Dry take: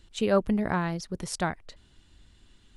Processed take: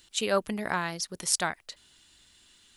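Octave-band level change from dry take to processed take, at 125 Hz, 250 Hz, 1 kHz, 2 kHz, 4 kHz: -8.5 dB, -8.0 dB, 0.0 dB, +2.5 dB, +7.0 dB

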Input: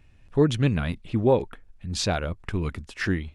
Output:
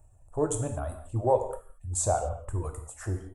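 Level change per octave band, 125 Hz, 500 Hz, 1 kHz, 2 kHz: -6.0 dB, -3.5 dB, +1.5 dB, -16.0 dB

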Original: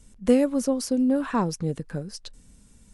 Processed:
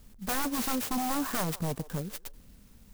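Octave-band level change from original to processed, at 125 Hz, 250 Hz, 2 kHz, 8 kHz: -4.0 dB, -10.5 dB, +1.5 dB, +1.0 dB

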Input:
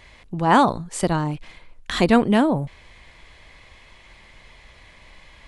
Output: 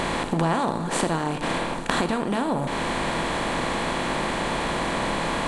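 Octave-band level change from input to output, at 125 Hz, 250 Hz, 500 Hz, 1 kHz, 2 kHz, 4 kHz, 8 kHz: -1.5 dB, -4.0 dB, -1.5 dB, -1.5 dB, +2.5 dB, +3.5 dB, +3.5 dB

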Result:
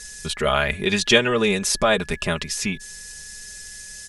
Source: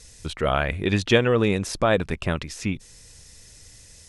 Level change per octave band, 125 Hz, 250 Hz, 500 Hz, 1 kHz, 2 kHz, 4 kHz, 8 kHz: -4.5 dB, 0.0 dB, +0.5 dB, +2.0 dB, +5.0 dB, +8.0 dB, +11.0 dB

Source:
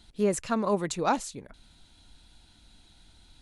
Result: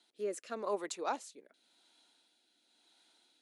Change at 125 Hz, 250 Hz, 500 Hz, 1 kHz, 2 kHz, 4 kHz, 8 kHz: under -25 dB, -17.5 dB, -9.0 dB, -10.0 dB, -10.0 dB, -9.0 dB, -10.5 dB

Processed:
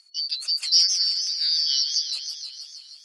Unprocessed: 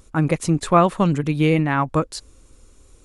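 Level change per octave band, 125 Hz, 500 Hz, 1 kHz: under -40 dB, under -40 dB, under -40 dB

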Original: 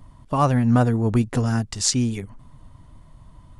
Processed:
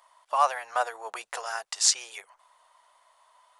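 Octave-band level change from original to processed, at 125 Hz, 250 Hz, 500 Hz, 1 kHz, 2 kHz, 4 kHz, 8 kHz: under -40 dB, under -40 dB, -8.5 dB, -0.5 dB, 0.0 dB, 0.0 dB, 0.0 dB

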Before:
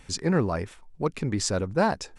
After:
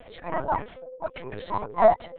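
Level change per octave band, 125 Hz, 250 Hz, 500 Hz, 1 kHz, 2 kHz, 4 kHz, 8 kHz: -13.0 dB, -11.0 dB, +3.0 dB, +6.0 dB, -4.0 dB, -13.0 dB, under -40 dB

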